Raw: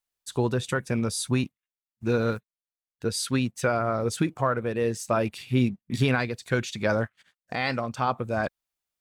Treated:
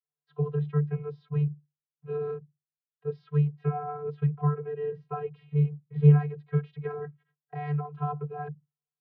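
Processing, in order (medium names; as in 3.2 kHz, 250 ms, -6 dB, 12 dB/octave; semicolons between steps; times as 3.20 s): Gaussian low-pass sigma 3.5 samples; vocoder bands 32, square 147 Hz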